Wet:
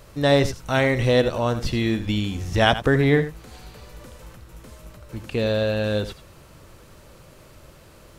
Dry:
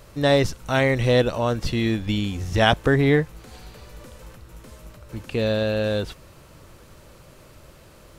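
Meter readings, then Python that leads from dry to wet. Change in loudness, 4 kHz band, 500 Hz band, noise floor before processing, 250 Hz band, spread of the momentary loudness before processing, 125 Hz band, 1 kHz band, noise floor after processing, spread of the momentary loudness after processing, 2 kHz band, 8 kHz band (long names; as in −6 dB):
0.0 dB, 0.0 dB, 0.0 dB, −49 dBFS, 0.0 dB, 11 LU, 0.0 dB, 0.0 dB, −49 dBFS, 10 LU, 0.0 dB, 0.0 dB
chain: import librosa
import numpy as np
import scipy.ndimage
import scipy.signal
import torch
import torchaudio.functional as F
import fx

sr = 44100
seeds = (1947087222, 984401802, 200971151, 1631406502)

y = x + 10.0 ** (-12.5 / 20.0) * np.pad(x, (int(85 * sr / 1000.0), 0))[:len(x)]
y = fx.end_taper(y, sr, db_per_s=340.0)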